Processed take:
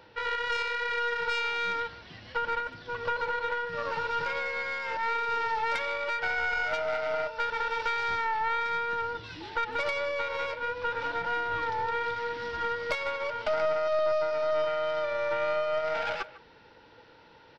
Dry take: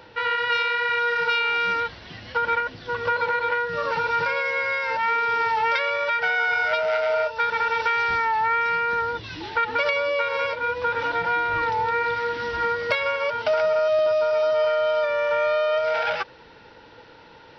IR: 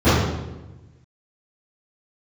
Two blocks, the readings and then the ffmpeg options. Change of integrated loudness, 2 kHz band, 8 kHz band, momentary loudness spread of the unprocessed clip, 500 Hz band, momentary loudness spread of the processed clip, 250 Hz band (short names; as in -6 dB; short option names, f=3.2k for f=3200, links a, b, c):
-7.0 dB, -7.5 dB, n/a, 5 LU, -7.0 dB, 5 LU, -5.5 dB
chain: -filter_complex "[0:a]asplit=2[a][b];[b]adelay=150,highpass=300,lowpass=3.4k,asoftclip=type=hard:threshold=-16.5dB,volume=-16dB[c];[a][c]amix=inputs=2:normalize=0,aeval=exprs='0.422*(cos(1*acos(clip(val(0)/0.422,-1,1)))-cos(1*PI/2))+0.0668*(cos(4*acos(clip(val(0)/0.422,-1,1)))-cos(4*PI/2))':c=same,volume=-7.5dB"